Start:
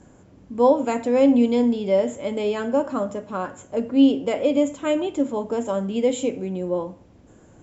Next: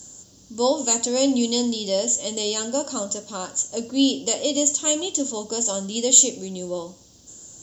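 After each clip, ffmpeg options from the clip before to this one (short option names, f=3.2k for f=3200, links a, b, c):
-af "aexciter=amount=14.2:drive=7.7:freq=3.5k,volume=-4.5dB"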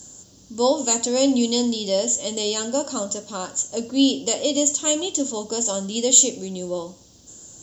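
-af "equalizer=f=13k:w=0.33:g=-2.5,volume=1.5dB"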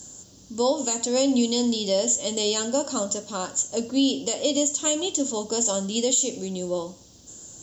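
-af "alimiter=limit=-12dB:level=0:latency=1:release=175"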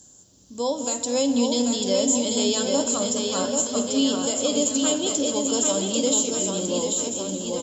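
-filter_complex "[0:a]asplit=2[a][b];[b]aecho=0:1:213|426|639|852|1065|1278|1491:0.237|0.142|0.0854|0.0512|0.0307|0.0184|0.0111[c];[a][c]amix=inputs=2:normalize=0,dynaudnorm=f=140:g=9:m=8.5dB,asplit=2[d][e];[e]aecho=0:1:790|1501|2141|2717|3235:0.631|0.398|0.251|0.158|0.1[f];[d][f]amix=inputs=2:normalize=0,volume=-8dB"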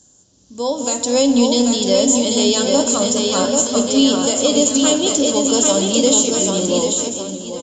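-af "dynaudnorm=f=110:g=13:m=11.5dB,aeval=exprs='0.891*(cos(1*acos(clip(val(0)/0.891,-1,1)))-cos(1*PI/2))+0.00708*(cos(4*acos(clip(val(0)/0.891,-1,1)))-cos(4*PI/2))':c=same,aresample=16000,aresample=44100"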